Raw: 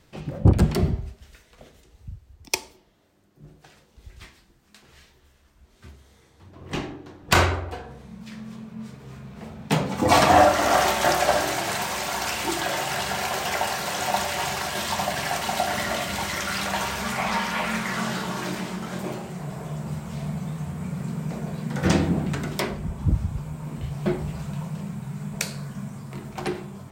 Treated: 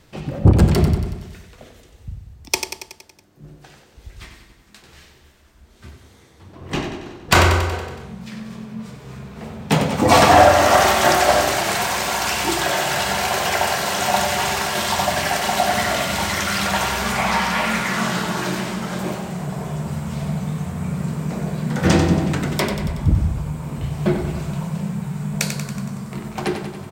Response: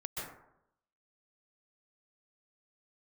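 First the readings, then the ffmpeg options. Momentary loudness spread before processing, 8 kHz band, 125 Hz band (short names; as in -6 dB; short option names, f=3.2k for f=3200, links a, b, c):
17 LU, +6.0 dB, +6.0 dB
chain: -af "aecho=1:1:93|186|279|372|465|558|651:0.398|0.235|0.139|0.0818|0.0482|0.0285|0.0168,acontrast=35"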